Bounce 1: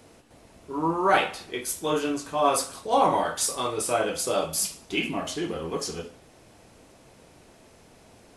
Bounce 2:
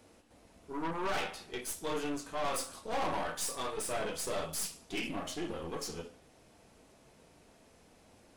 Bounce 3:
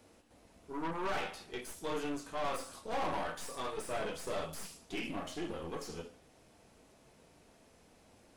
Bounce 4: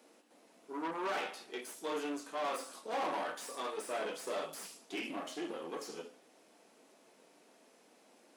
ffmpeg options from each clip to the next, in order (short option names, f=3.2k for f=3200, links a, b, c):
-af "aeval=exprs='(tanh(22.4*val(0)+0.65)-tanh(0.65))/22.4':c=same,flanger=delay=3.5:depth=1.3:regen=-69:speed=0.36:shape=triangular"
-filter_complex "[0:a]acrossover=split=2700[a][b];[b]acompressor=threshold=-44dB:ratio=4:attack=1:release=60[c];[a][c]amix=inputs=2:normalize=0,volume=-1.5dB"
-af "highpass=f=240:w=0.5412,highpass=f=240:w=1.3066"